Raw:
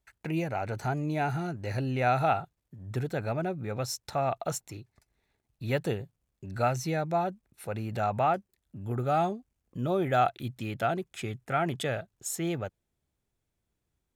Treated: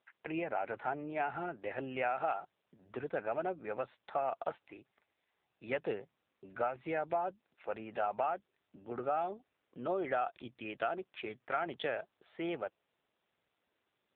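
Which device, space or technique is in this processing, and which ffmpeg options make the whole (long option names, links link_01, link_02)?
voicemail: -af "highpass=410,lowpass=3300,acompressor=threshold=-29dB:ratio=8" -ar 8000 -c:a libopencore_amrnb -b:a 7400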